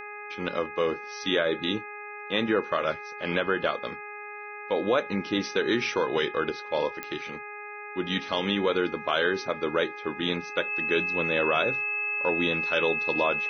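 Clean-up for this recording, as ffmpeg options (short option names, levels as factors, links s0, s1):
-af "adeclick=t=4,bandreject=f=415.4:t=h:w=4,bandreject=f=830.8:t=h:w=4,bandreject=f=1246.2:t=h:w=4,bandreject=f=1661.6:t=h:w=4,bandreject=f=2077:t=h:w=4,bandreject=f=2492.4:t=h:w=4,bandreject=f=2600:w=30"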